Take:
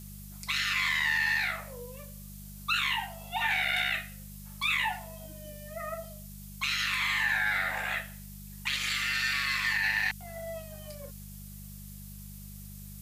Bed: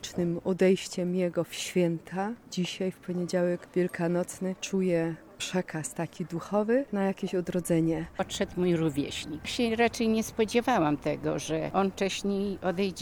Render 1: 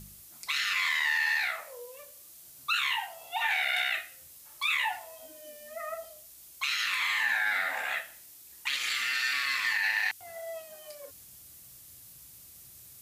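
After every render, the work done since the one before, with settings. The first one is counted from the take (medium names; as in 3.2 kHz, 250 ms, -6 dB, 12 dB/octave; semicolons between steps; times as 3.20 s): de-hum 50 Hz, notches 6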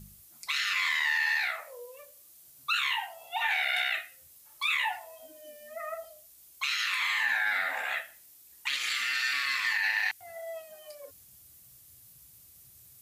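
noise reduction 6 dB, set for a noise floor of -52 dBFS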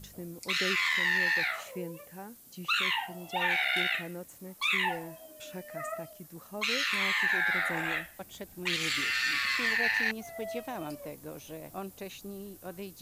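add bed -13.5 dB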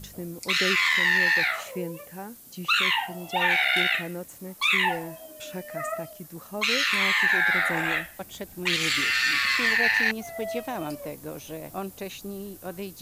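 trim +6 dB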